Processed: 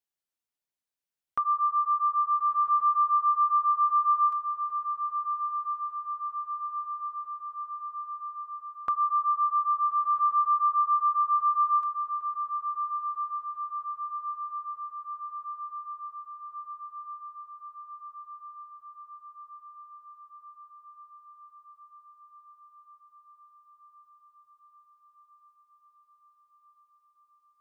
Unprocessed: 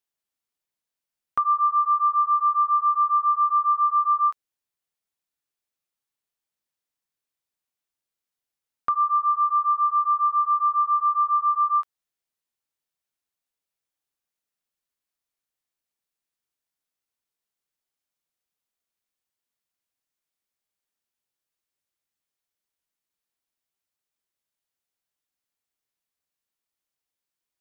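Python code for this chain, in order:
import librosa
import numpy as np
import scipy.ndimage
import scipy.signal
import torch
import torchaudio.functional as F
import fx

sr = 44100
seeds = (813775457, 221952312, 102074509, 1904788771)

y = fx.echo_diffused(x, sr, ms=1344, feedback_pct=71, wet_db=-9.0)
y = y * librosa.db_to_amplitude(-5.0)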